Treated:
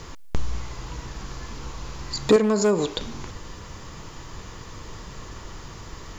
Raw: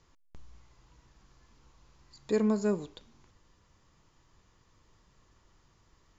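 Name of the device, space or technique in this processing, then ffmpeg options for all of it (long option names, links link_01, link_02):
mastering chain: -filter_complex "[0:a]equalizer=frequency=450:width_type=o:width=0.23:gain=3,acompressor=threshold=-34dB:ratio=3,asoftclip=type=hard:threshold=-29.5dB,alimiter=level_in=34.5dB:limit=-1dB:release=50:level=0:latency=1,asettb=1/sr,asplit=3[link_01][link_02][link_03];[link_01]atrim=end=2.364[link_04];[link_02]atrim=start=2.36:end=2.97,asetpts=PTS-STARTPTS,afade=type=in:duration=0.004:curve=qsin,afade=type=out:start_time=0.606:duration=0.004:curve=qsin,lowshelf=frequency=320:gain=-11[link_05];[link_03]atrim=start=2.966[link_06];[link_04][link_05]acrossfade=duration=0.004:curve1=hsin:curve2=qsin[link_07];[link_07][link_06]acrossfade=duration=0.004:curve1=qsin:curve2=hsin,volume=-8.5dB"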